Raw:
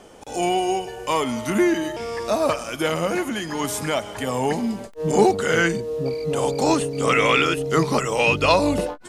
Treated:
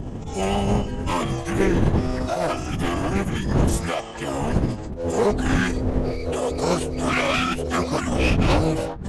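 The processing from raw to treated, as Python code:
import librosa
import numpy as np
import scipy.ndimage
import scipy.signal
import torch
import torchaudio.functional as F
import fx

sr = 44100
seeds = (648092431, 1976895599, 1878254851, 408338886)

y = fx.dmg_wind(x, sr, seeds[0], corner_hz=180.0, level_db=-18.0)
y = fx.clip_asym(y, sr, top_db=-22.0, bottom_db=-9.0)
y = fx.pitch_keep_formants(y, sr, semitones=-10.5)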